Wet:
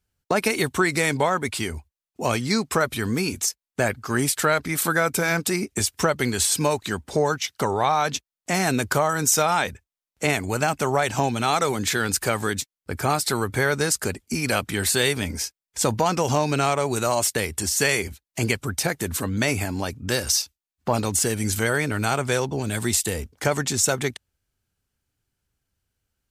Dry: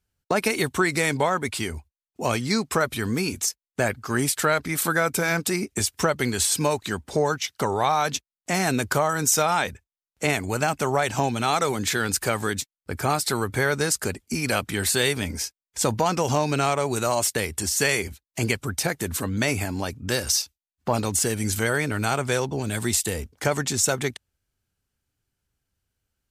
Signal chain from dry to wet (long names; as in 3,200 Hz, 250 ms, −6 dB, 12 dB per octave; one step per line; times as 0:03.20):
0:07.71–0:08.16: high-shelf EQ 5,900 Hz → 11,000 Hz −7.5 dB
level +1 dB